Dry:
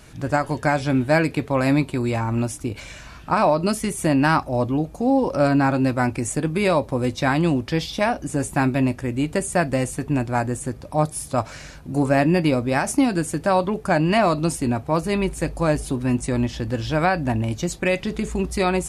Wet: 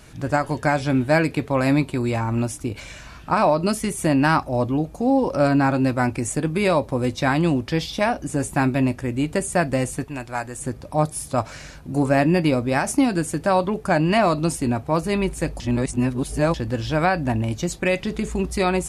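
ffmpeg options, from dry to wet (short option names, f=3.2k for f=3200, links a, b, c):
-filter_complex "[0:a]asettb=1/sr,asplit=3[a][b][c];[a]atrim=end=10.044[d];[b]atrim=start=10.04:end=10.59,asetpts=PTS-STARTPTS,afade=t=in:d=0.004:c=qsin,afade=t=out:st=0.546:d=0.004:c=qsin,equalizer=f=170:w=0.31:g=-12[e];[c]atrim=start=10.586[f];[d][e]acrossfade=d=0.004:c1=hsin:c2=qsin[g];[g][f]acrossfade=d=0.004:c1=qsin:c2=hsin,asplit=3[h][i][j];[h]atrim=end=15.602[k];[i]atrim=start=15.598:end=16.542,asetpts=PTS-STARTPTS,areverse[l];[j]atrim=start=16.538[m];[k][l]acrossfade=d=0.004:c1=hsin:c2=hsin[n];[n][m]acrossfade=d=0.004:c1=hsin:c2=hsin"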